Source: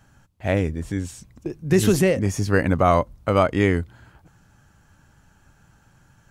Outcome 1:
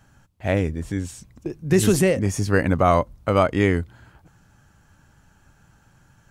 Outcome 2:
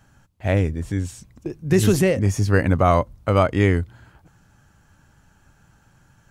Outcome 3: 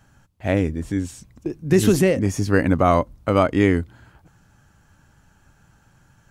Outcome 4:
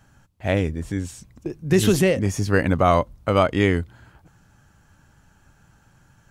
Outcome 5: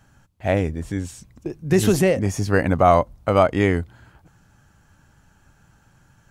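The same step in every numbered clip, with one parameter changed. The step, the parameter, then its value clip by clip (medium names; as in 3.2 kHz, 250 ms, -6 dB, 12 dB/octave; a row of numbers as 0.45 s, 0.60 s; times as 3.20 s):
dynamic bell, frequency: 8.8 kHz, 100 Hz, 280 Hz, 3.3 kHz, 730 Hz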